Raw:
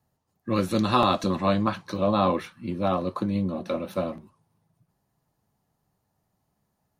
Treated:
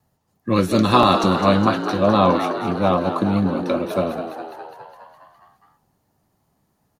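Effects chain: vibrato 3 Hz 29 cents; frequency-shifting echo 206 ms, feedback 63%, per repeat +77 Hz, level -9 dB; trim +6.5 dB

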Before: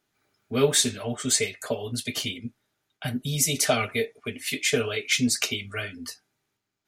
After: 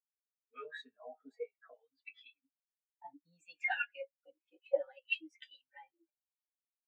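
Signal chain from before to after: pitch bend over the whole clip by +5.5 st starting unshifted; LFO band-pass sine 0.61 Hz 850–2000 Hz; spectral contrast expander 2.5:1

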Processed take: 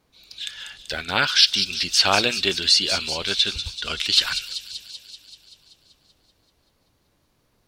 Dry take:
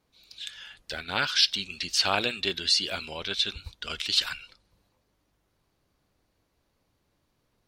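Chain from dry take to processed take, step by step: feedback echo behind a high-pass 192 ms, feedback 66%, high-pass 4.9 kHz, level -5 dB; trim +6.5 dB

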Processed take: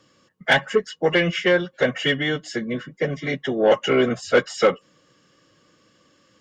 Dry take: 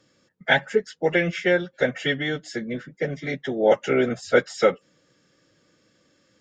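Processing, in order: Chebyshev shaper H 5 -21 dB, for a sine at -5 dBFS; small resonant body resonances 1.1/2.9 kHz, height 14 dB, ringing for 45 ms

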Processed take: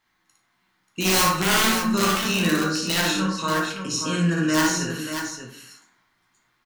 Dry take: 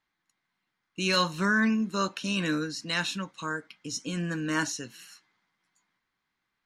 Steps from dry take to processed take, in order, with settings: treble shelf 4.3 kHz +2.5 dB; hum notches 50/100/150/200 Hz; in parallel at +1.5 dB: compression 20:1, threshold -37 dBFS, peak gain reduction 18 dB; on the sum: flange 0.32 Hz, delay 9.3 ms, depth 4.2 ms, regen -89%; integer overflow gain 21.5 dB; on a send: multi-tap echo 58/585 ms -3/-7 dB; on the sum: plate-style reverb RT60 0.66 s, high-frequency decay 0.45×, DRR -0.5 dB; trim +5 dB

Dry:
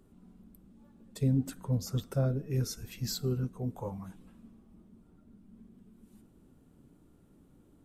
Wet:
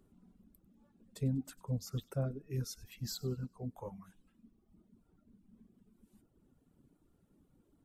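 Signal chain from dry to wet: reverb removal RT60 1.2 s; feedback echo behind a high-pass 97 ms, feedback 41%, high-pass 2.8 kHz, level -20 dB; trim -5.5 dB

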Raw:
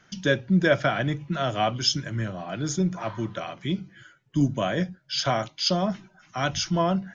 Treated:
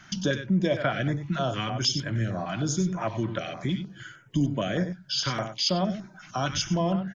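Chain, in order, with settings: compression 2:1, threshold -39 dBFS, peak gain reduction 13 dB; delay 95 ms -10 dB; step-sequenced notch 6.5 Hz 470–6100 Hz; trim +8.5 dB

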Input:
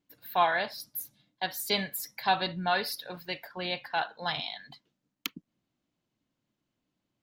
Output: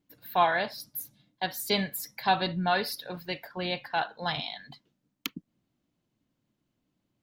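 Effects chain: bass shelf 440 Hz +6 dB

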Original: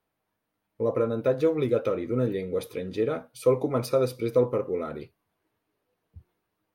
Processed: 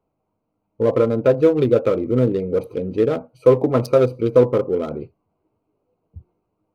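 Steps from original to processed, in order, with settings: local Wiener filter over 25 samples; trim +9 dB

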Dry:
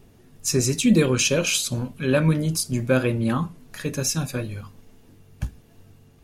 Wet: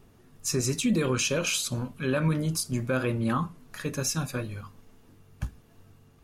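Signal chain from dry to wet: peaking EQ 1.2 kHz +6 dB 0.76 oct; peak limiter -12.5 dBFS, peak gain reduction 5.5 dB; trim -4.5 dB

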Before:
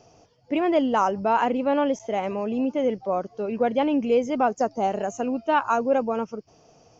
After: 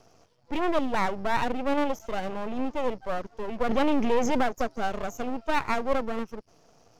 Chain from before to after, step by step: half-wave rectifier; 3.69–4.43 s: level flattener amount 70%

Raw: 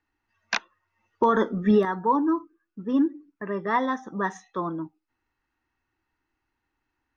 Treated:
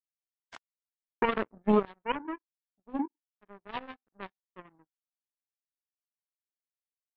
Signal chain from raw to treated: knee-point frequency compression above 1.6 kHz 1.5:1; treble shelf 2.4 kHz -7.5 dB; power-law waveshaper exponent 3

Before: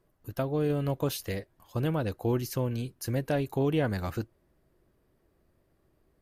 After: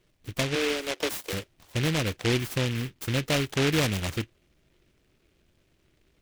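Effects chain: 0.55–1.33 s: steep high-pass 300 Hz 72 dB/octave; delay time shaken by noise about 2.3 kHz, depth 0.24 ms; trim +2.5 dB

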